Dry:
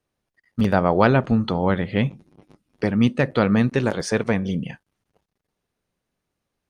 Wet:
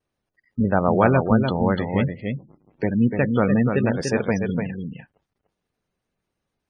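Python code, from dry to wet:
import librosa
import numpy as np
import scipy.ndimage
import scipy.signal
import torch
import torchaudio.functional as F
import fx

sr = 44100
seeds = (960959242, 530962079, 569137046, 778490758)

y = x + 10.0 ** (-5.5 / 20.0) * np.pad(x, (int(294 * sr / 1000.0), 0))[:len(x)]
y = fx.vibrato(y, sr, rate_hz=0.56, depth_cents=18.0)
y = fx.spec_gate(y, sr, threshold_db=-25, keep='strong')
y = y * librosa.db_to_amplitude(-1.0)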